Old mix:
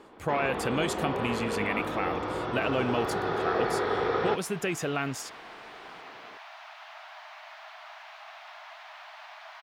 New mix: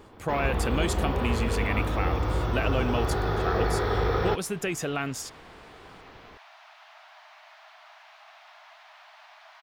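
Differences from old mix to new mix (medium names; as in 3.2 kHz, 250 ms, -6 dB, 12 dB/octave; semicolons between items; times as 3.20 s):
first sound: remove band-pass 210–4900 Hz; second sound -5.5 dB; master: add tone controls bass +1 dB, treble +3 dB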